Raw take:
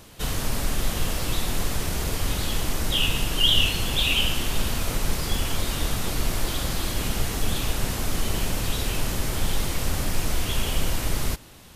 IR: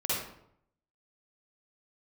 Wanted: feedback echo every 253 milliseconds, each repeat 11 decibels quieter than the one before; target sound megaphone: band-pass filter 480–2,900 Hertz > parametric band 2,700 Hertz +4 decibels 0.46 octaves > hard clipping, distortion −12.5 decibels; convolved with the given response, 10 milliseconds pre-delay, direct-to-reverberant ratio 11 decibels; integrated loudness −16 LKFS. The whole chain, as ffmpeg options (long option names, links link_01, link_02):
-filter_complex "[0:a]aecho=1:1:253|506|759:0.282|0.0789|0.0221,asplit=2[link_01][link_02];[1:a]atrim=start_sample=2205,adelay=10[link_03];[link_02][link_03]afir=irnorm=-1:irlink=0,volume=-19dB[link_04];[link_01][link_04]amix=inputs=2:normalize=0,highpass=480,lowpass=2900,equalizer=frequency=2700:width_type=o:width=0.46:gain=4,asoftclip=type=hard:threshold=-21.5dB,volume=14dB"